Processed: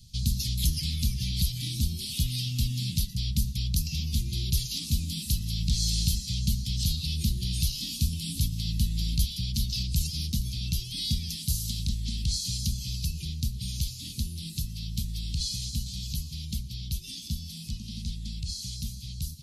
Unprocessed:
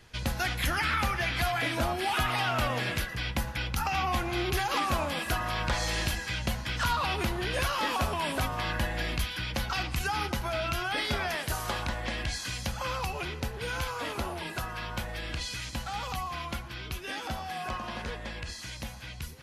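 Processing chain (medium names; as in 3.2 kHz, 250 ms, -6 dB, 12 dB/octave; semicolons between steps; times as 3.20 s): elliptic band-stop 190–4100 Hz, stop band 50 dB; trim +7 dB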